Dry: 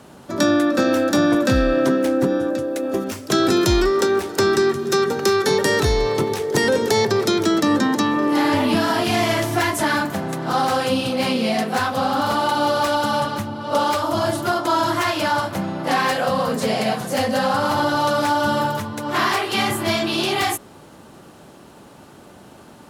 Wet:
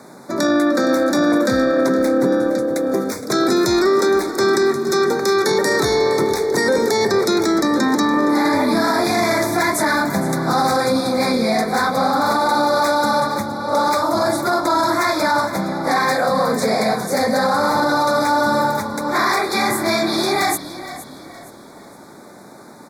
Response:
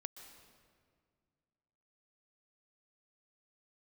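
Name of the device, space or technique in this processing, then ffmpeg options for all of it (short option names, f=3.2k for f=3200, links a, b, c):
PA system with an anti-feedback notch: -filter_complex "[0:a]asettb=1/sr,asplit=3[a][b][c];[a]atrim=end=10.074[d];[b]atrim=start=10.07:end=10.77,asetpts=PTS-STARTPTS,afade=t=in:d=0.004:c=qsin,afade=t=out:st=0.696:d=0.004:c=qsin,bass=f=250:g=7,treble=f=4k:g=3[e];[c]atrim=start=10.766[f];[d][e]acrossfade=d=0.004:c1=hsin:c2=qsin[g];[g][f]acrossfade=d=0.004:c1=qsin:c2=hsin,highpass=180,asuperstop=centerf=2900:order=12:qfactor=2.6,alimiter=limit=-13dB:level=0:latency=1:release=12,asplit=5[h][i][j][k][l];[i]adelay=466,afreqshift=-37,volume=-14dB[m];[j]adelay=932,afreqshift=-74,volume=-22.6dB[n];[k]adelay=1398,afreqshift=-111,volume=-31.3dB[o];[l]adelay=1864,afreqshift=-148,volume=-39.9dB[p];[h][m][n][o][p]amix=inputs=5:normalize=0,volume=4dB"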